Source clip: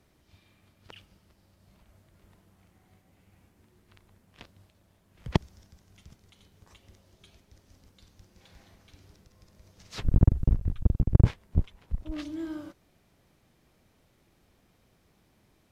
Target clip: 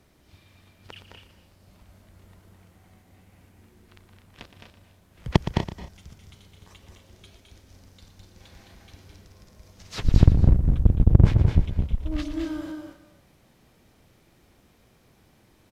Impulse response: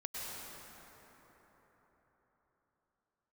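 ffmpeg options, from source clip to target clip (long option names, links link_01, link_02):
-filter_complex "[0:a]aecho=1:1:212.8|244.9:0.501|0.282,asplit=2[link_01][link_02];[1:a]atrim=start_sample=2205,afade=type=out:start_time=0.21:duration=0.01,atrim=end_sample=9702,adelay=117[link_03];[link_02][link_03]afir=irnorm=-1:irlink=0,volume=-7.5dB[link_04];[link_01][link_04]amix=inputs=2:normalize=0,volume=5dB"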